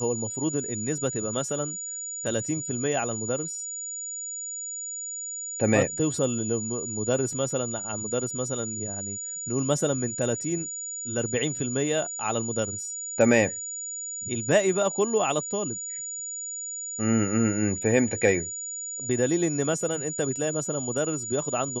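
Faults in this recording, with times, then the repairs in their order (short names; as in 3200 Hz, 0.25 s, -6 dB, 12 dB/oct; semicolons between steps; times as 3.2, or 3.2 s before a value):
tone 6900 Hz -32 dBFS
7.33 gap 2.4 ms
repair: notch 6900 Hz, Q 30; interpolate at 7.33, 2.4 ms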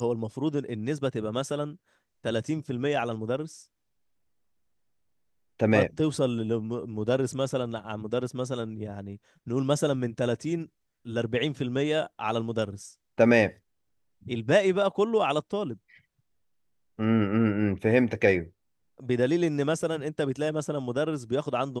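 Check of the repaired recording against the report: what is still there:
none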